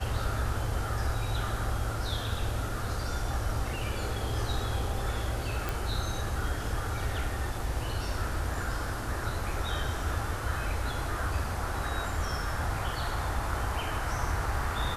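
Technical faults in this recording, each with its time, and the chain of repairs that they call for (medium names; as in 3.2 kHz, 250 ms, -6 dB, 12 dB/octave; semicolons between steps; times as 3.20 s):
5.69 s: pop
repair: de-click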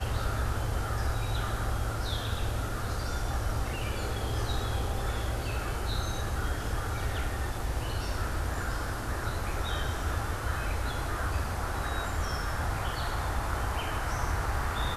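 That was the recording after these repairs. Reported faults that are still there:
nothing left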